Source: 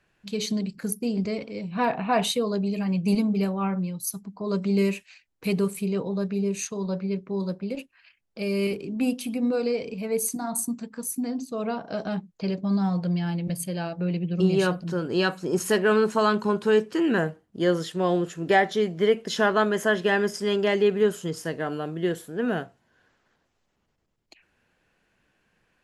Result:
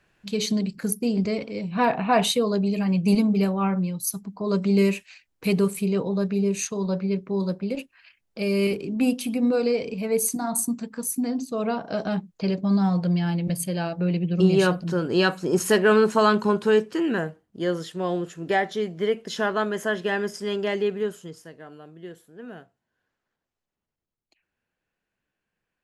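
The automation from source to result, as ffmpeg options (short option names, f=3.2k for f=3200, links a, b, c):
-af "volume=3dB,afade=t=out:st=16.42:d=0.82:silence=0.501187,afade=t=out:st=20.78:d=0.72:silence=0.281838"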